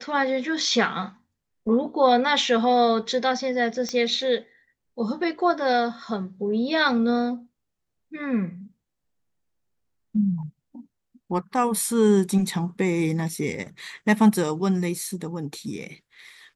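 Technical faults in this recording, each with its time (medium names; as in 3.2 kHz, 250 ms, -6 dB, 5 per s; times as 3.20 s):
3.89 s: pop -16 dBFS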